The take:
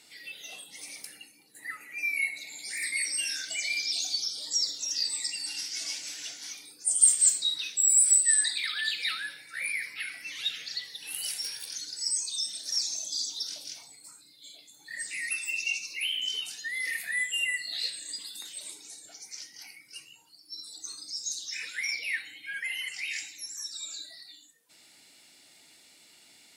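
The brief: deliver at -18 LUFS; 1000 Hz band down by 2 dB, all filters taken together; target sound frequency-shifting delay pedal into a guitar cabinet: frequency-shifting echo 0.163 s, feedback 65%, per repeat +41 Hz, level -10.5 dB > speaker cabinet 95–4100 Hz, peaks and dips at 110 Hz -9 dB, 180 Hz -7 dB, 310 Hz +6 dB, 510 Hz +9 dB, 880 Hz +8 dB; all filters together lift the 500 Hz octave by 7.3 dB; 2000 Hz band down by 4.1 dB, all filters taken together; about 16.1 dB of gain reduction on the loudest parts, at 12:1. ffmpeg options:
-filter_complex "[0:a]equalizer=f=500:t=o:g=3.5,equalizer=f=1k:t=o:g=-6,equalizer=f=2k:t=o:g=-4,acompressor=threshold=-31dB:ratio=12,asplit=9[a][b][c][d][e][f][g][h][i];[b]adelay=163,afreqshift=41,volume=-10.5dB[j];[c]adelay=326,afreqshift=82,volume=-14.2dB[k];[d]adelay=489,afreqshift=123,volume=-18dB[l];[e]adelay=652,afreqshift=164,volume=-21.7dB[m];[f]adelay=815,afreqshift=205,volume=-25.5dB[n];[g]adelay=978,afreqshift=246,volume=-29.2dB[o];[h]adelay=1141,afreqshift=287,volume=-33dB[p];[i]adelay=1304,afreqshift=328,volume=-36.7dB[q];[a][j][k][l][m][n][o][p][q]amix=inputs=9:normalize=0,highpass=95,equalizer=f=110:t=q:w=4:g=-9,equalizer=f=180:t=q:w=4:g=-7,equalizer=f=310:t=q:w=4:g=6,equalizer=f=510:t=q:w=4:g=9,equalizer=f=880:t=q:w=4:g=8,lowpass=f=4.1k:w=0.5412,lowpass=f=4.1k:w=1.3066,volume=20.5dB"

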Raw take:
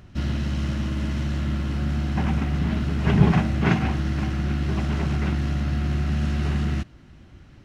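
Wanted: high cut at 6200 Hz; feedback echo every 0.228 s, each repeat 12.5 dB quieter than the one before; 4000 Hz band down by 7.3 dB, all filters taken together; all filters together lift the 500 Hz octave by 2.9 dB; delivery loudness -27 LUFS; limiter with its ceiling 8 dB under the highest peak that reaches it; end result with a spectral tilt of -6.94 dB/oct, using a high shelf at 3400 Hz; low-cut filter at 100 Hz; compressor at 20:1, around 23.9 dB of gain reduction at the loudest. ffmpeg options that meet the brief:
-af "highpass=100,lowpass=6.2k,equalizer=f=500:t=o:g=4.5,highshelf=f=3.4k:g=-7.5,equalizer=f=4k:t=o:g=-5,acompressor=threshold=-35dB:ratio=20,alimiter=level_in=9.5dB:limit=-24dB:level=0:latency=1,volume=-9.5dB,aecho=1:1:228|456|684:0.237|0.0569|0.0137,volume=15.5dB"

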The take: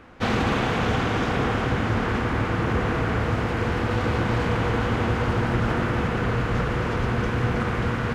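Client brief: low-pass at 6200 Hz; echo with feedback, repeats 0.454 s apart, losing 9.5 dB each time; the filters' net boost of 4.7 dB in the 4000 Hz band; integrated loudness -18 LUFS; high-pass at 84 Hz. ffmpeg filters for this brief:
-af "highpass=84,lowpass=6.2k,equalizer=f=4k:t=o:g=7,aecho=1:1:454|908|1362|1816:0.335|0.111|0.0365|0.012,volume=5.5dB"

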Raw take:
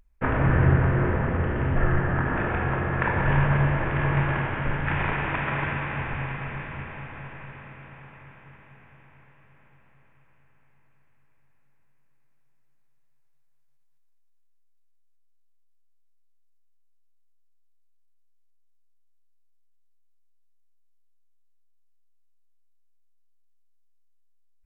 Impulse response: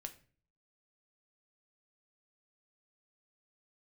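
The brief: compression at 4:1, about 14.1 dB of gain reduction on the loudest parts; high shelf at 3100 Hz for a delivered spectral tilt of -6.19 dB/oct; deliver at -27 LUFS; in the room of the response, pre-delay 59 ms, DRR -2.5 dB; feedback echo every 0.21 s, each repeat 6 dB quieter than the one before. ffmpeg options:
-filter_complex "[0:a]highshelf=f=3.1k:g=6,acompressor=threshold=-32dB:ratio=4,aecho=1:1:210|420|630|840|1050|1260:0.501|0.251|0.125|0.0626|0.0313|0.0157,asplit=2[a][b];[1:a]atrim=start_sample=2205,adelay=59[c];[b][c]afir=irnorm=-1:irlink=0,volume=6.5dB[d];[a][d]amix=inputs=2:normalize=0,volume=0.5dB"

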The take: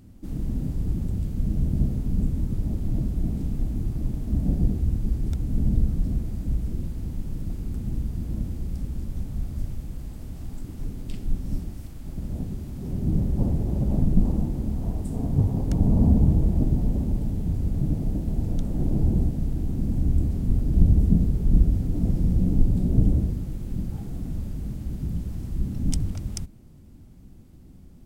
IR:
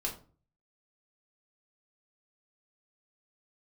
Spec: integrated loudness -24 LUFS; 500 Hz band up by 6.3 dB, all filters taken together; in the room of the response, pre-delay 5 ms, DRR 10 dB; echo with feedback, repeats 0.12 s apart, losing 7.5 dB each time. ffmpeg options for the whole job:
-filter_complex "[0:a]equalizer=f=500:t=o:g=8.5,aecho=1:1:120|240|360|480|600:0.422|0.177|0.0744|0.0312|0.0131,asplit=2[a][b];[1:a]atrim=start_sample=2205,adelay=5[c];[b][c]afir=irnorm=-1:irlink=0,volume=-12.5dB[d];[a][d]amix=inputs=2:normalize=0,volume=1dB"

